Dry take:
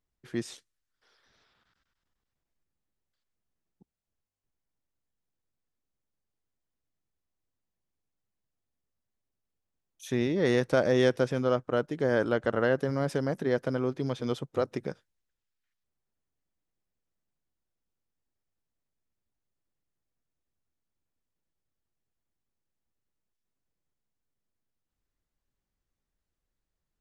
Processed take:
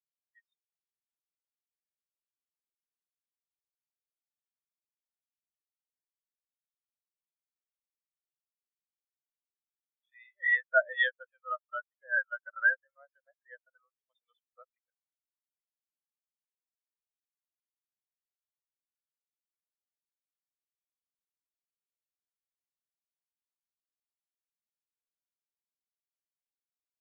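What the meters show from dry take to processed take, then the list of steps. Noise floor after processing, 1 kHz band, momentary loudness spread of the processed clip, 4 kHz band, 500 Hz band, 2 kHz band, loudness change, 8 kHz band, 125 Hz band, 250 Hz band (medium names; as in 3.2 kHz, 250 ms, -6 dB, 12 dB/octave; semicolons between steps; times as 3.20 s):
under -85 dBFS, -2.5 dB, 14 LU, -6.0 dB, -14.0 dB, +7.0 dB, -1.5 dB, under -25 dB, under -40 dB, under -40 dB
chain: high-pass 650 Hz 24 dB/octave; peaking EQ 2.7 kHz +14.5 dB 2.4 oct; spectral contrast expander 4:1; trim -4.5 dB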